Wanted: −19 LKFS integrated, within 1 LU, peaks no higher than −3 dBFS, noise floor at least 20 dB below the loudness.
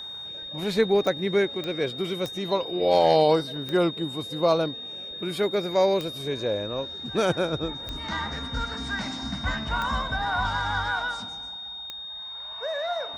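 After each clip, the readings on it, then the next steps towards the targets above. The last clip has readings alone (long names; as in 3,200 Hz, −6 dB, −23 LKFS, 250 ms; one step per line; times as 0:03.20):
number of clicks 8; interfering tone 3,700 Hz; level of the tone −35 dBFS; integrated loudness −26.5 LKFS; sample peak −9.5 dBFS; target loudness −19.0 LKFS
→ click removal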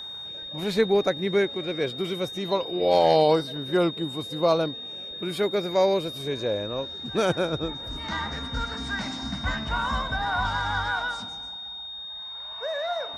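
number of clicks 0; interfering tone 3,700 Hz; level of the tone −35 dBFS
→ notch filter 3,700 Hz, Q 30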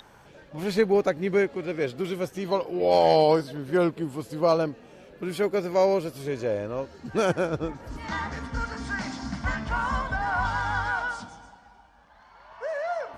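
interfering tone none found; integrated loudness −26.5 LKFS; sample peak −9.5 dBFS; target loudness −19.0 LKFS
→ level +7.5 dB
brickwall limiter −3 dBFS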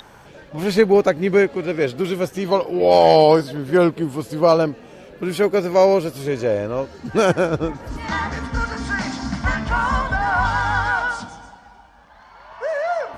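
integrated loudness −19.0 LKFS; sample peak −3.0 dBFS; background noise floor −46 dBFS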